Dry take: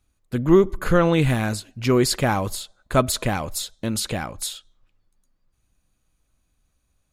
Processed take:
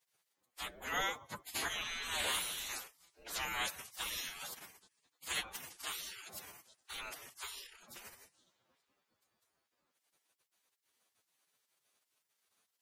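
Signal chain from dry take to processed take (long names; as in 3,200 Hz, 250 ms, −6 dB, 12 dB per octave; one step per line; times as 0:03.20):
phase-vocoder stretch with locked phases 1.8×
gate on every frequency bin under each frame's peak −30 dB weak
level +3 dB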